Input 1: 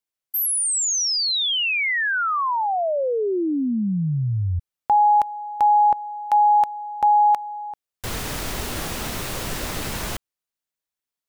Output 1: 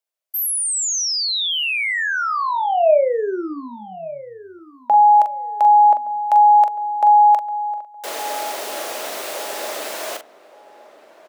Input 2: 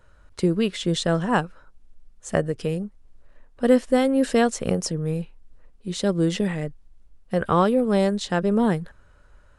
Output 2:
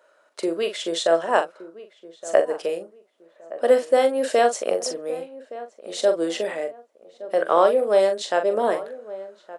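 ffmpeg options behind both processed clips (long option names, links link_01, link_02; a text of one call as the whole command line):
ffmpeg -i in.wav -filter_complex "[0:a]highpass=frequency=360:width=0.5412,highpass=frequency=360:width=1.3066,equalizer=frequency=620:width_type=o:width=0.37:gain=10.5,asplit=2[link_01][link_02];[link_02]adelay=42,volume=-8dB[link_03];[link_01][link_03]amix=inputs=2:normalize=0,asplit=2[link_04][link_05];[link_05]adelay=1168,lowpass=frequency=1200:poles=1,volume=-16dB,asplit=2[link_06][link_07];[link_07]adelay=1168,lowpass=frequency=1200:poles=1,volume=0.33,asplit=2[link_08][link_09];[link_09]adelay=1168,lowpass=frequency=1200:poles=1,volume=0.33[link_10];[link_06][link_08][link_10]amix=inputs=3:normalize=0[link_11];[link_04][link_11]amix=inputs=2:normalize=0" out.wav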